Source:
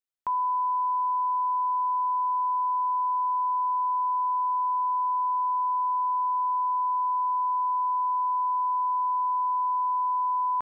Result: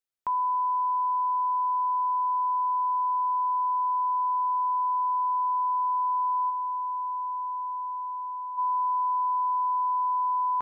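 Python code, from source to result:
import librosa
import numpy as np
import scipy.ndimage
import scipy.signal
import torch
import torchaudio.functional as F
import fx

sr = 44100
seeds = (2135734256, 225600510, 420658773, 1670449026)

y = fx.peak_eq(x, sr, hz=fx.line((6.49, 870.0), (8.57, 950.0)), db=-12.5, octaves=0.26, at=(6.49, 8.57), fade=0.02)
y = fx.echo_bbd(y, sr, ms=276, stages=1024, feedback_pct=42, wet_db=-15.0)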